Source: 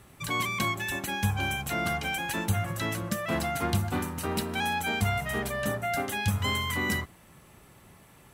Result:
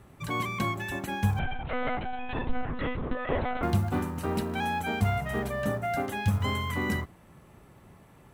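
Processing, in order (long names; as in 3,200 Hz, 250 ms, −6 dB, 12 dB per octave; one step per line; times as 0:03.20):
high-shelf EQ 2,000 Hz −11.5 dB
floating-point word with a short mantissa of 4 bits
0:01.39–0:03.63: one-pitch LPC vocoder at 8 kHz 250 Hz
level +2 dB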